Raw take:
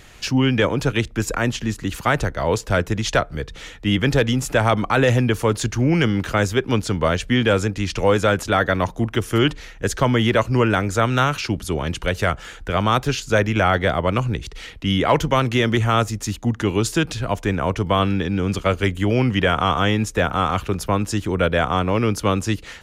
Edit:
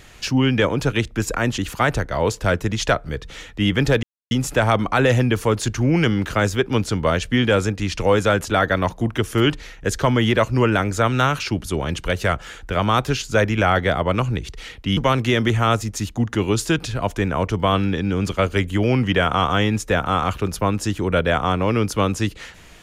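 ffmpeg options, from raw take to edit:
ffmpeg -i in.wav -filter_complex "[0:a]asplit=4[link_01][link_02][link_03][link_04];[link_01]atrim=end=1.582[link_05];[link_02]atrim=start=1.838:end=4.29,asetpts=PTS-STARTPTS,afade=type=out:start_time=2.448:duration=0.004:curve=hsin,apad=pad_dur=0.28[link_06];[link_03]atrim=start=4.29:end=14.952,asetpts=PTS-STARTPTS,afade=type=in:duration=0.004:curve=hsin[link_07];[link_04]atrim=start=15.238[link_08];[link_06][link_07]concat=n=2:v=0:a=1[link_09];[link_05][link_09]acrossfade=duration=0.004:curve1=hsin:curve2=hsin[link_10];[link_10][link_08]acrossfade=duration=0.004:curve1=hsin:curve2=hsin" out.wav

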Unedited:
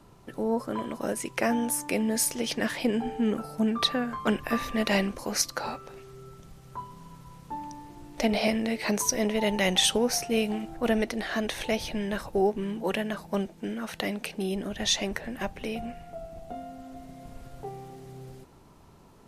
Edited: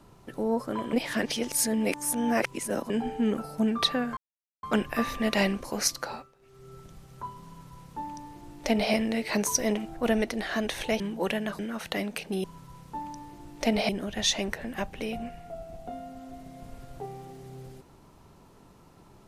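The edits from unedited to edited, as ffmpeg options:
ffmpeg -i in.wav -filter_complex "[0:a]asplit=11[link_01][link_02][link_03][link_04][link_05][link_06][link_07][link_08][link_09][link_10][link_11];[link_01]atrim=end=0.932[link_12];[link_02]atrim=start=0.928:end=2.902,asetpts=PTS-STARTPTS,areverse[link_13];[link_03]atrim=start=2.898:end=4.17,asetpts=PTS-STARTPTS,afade=type=out:start_time=1.268:duration=0.004:curve=hsin,apad=pad_dur=0.46[link_14];[link_04]atrim=start=4.17:end=5.87,asetpts=PTS-STARTPTS,afade=type=in:duration=0.004:curve=hsin,afade=type=out:start_time=1.33:duration=0.37:silence=0.11885[link_15];[link_05]atrim=start=5.87:end=5.94,asetpts=PTS-STARTPTS,volume=-18.5dB[link_16];[link_06]atrim=start=5.94:end=9.312,asetpts=PTS-STARTPTS,afade=type=in:duration=0.37:silence=0.11885[link_17];[link_07]atrim=start=10.568:end=11.802[link_18];[link_08]atrim=start=12.638:end=13.232[link_19];[link_09]atrim=start=13.668:end=14.522[link_20];[link_10]atrim=start=7.008:end=8.462[link_21];[link_11]atrim=start=14.518[link_22];[link_12][link_13]acrossfade=duration=0.004:curve1=hsin:curve2=hsin[link_23];[link_14][link_15][link_16][link_17]concat=n=4:v=0:a=1[link_24];[link_23][link_24]acrossfade=duration=0.004:curve1=hsin:curve2=hsin[link_25];[link_25][link_18]acrossfade=duration=0.004:curve1=hsin:curve2=hsin[link_26];[link_26][link_19]acrossfade=duration=0.004:curve1=hsin:curve2=hsin[link_27];[link_27][link_20]acrossfade=duration=0.004:curve1=hsin:curve2=hsin[link_28];[link_28][link_21]acrossfade=duration=0.004:curve1=hsin:curve2=hsin[link_29];[link_29][link_22]acrossfade=duration=0.004:curve1=hsin:curve2=hsin" out.wav

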